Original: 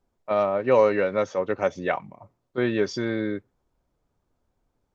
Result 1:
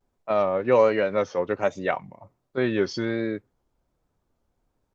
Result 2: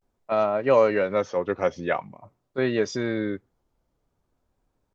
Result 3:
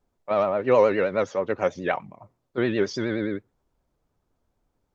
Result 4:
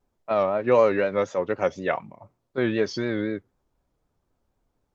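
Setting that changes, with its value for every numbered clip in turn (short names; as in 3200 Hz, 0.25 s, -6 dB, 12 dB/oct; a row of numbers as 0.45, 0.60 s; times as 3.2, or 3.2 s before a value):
vibrato, rate: 1.3, 0.47, 9.5, 4 Hz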